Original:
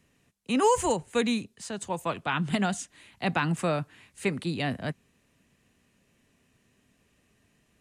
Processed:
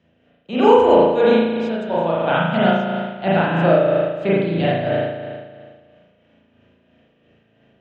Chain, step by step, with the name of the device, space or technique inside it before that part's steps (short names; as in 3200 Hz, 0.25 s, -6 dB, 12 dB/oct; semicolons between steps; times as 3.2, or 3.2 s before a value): 2.71–3.31 LPF 4700 Hz 12 dB/oct; combo amplifier with spring reverb and tremolo (spring tank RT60 1.8 s, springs 36 ms, chirp 70 ms, DRR -8 dB; tremolo 3 Hz, depth 40%; speaker cabinet 100–4000 Hz, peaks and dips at 140 Hz -4 dB, 260 Hz -4 dB, 600 Hz +8 dB, 1100 Hz -9 dB, 1600 Hz +5 dB, 3200 Hz +9 dB); band shelf 2700 Hz -8 dB; gain +5 dB